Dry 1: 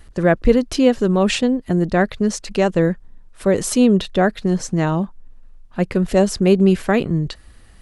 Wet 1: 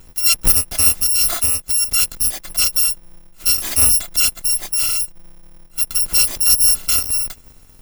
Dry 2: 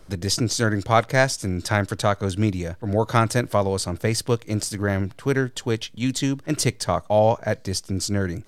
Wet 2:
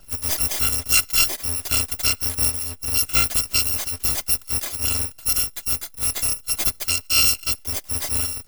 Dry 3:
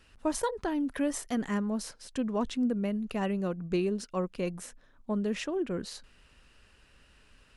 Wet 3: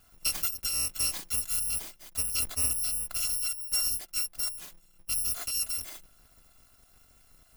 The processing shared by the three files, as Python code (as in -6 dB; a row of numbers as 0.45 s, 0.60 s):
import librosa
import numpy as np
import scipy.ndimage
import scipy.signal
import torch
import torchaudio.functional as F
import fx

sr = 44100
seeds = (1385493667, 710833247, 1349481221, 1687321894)

y = fx.bit_reversed(x, sr, seeds[0], block=256)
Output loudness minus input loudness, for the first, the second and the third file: +4.0 LU, +3.5 LU, +4.0 LU